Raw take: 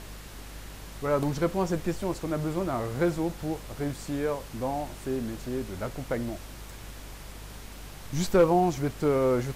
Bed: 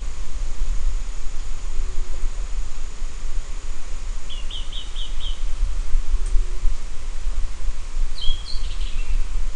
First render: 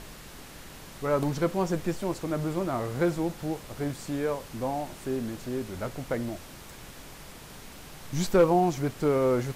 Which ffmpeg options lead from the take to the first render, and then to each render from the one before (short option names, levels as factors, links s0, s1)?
-af "bandreject=f=50:t=h:w=4,bandreject=f=100:t=h:w=4"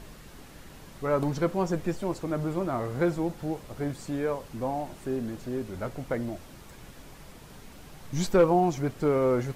-af "afftdn=nr=6:nf=-46"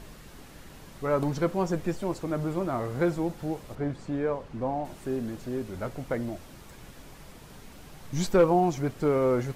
-filter_complex "[0:a]asettb=1/sr,asplit=3[s0][s1][s2];[s0]atrim=end=3.754[s3];[s1]atrim=start=3.75:end=4.85,asetpts=PTS-STARTPTS,afade=t=in:d=0.004:c=qsin,afade=t=out:st=1.096:d=0.004:c=qsin,aemphasis=mode=reproduction:type=75fm[s4];[s2]atrim=start=4.846[s5];[s3][s4]acrossfade=d=0.004:c1=hsin:c2=qsin[s6];[s6][s5]acrossfade=d=0.004:c1=qsin:c2=hsin"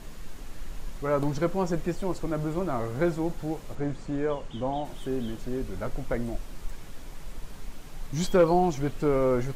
-filter_complex "[1:a]volume=0.15[s0];[0:a][s0]amix=inputs=2:normalize=0"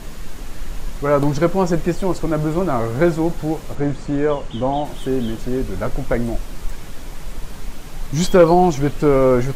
-af "volume=3.16,alimiter=limit=0.708:level=0:latency=1"